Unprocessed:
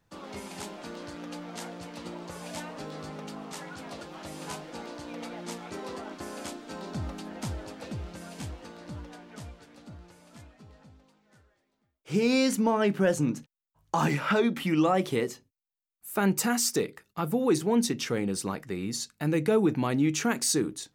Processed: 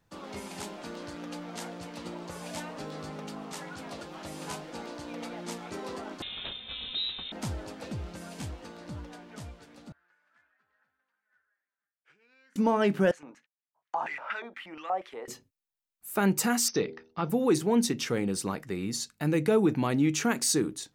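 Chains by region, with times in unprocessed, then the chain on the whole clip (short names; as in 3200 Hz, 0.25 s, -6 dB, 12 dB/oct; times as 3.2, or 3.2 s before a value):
6.22–7.32 inverted band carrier 3900 Hz + low shelf 480 Hz +9 dB
9.92–12.56 compressor 16:1, threshold -37 dBFS + band-pass 1600 Hz, Q 6.7
13.11–15.28 HPF 410 Hz 6 dB/oct + LFO band-pass square 4.2 Hz 770–1900 Hz
16.68–17.3 brick-wall FIR low-pass 6300 Hz + de-hum 79.7 Hz, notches 12
whole clip: dry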